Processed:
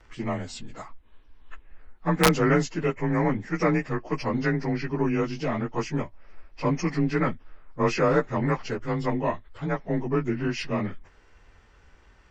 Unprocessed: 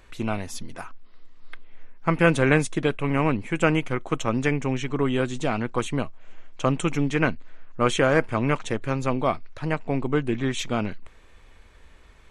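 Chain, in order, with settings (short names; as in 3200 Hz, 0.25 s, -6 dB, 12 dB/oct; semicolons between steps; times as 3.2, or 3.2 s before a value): inharmonic rescaling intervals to 91%; wrapped overs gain 8.5 dB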